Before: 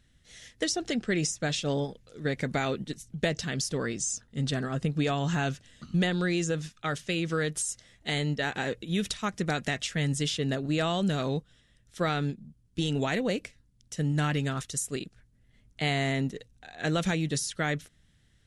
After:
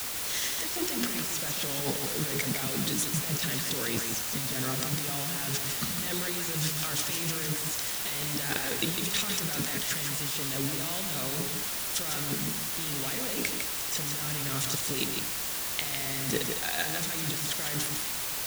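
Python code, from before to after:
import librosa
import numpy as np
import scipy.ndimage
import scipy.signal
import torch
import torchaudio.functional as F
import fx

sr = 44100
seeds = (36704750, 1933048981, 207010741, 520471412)

p1 = scipy.signal.sosfilt(scipy.signal.butter(2, 75.0, 'highpass', fs=sr, output='sos'), x)
p2 = fx.high_shelf(p1, sr, hz=2300.0, db=8.0)
p3 = fx.hum_notches(p2, sr, base_hz=60, count=7)
p4 = fx.over_compress(p3, sr, threshold_db=-38.0, ratio=-1.0)
p5 = fx.quant_dither(p4, sr, seeds[0], bits=6, dither='triangular')
p6 = p5 + fx.echo_single(p5, sr, ms=154, db=-5.5, dry=0)
y = p6 * 10.0 ** (1.5 / 20.0)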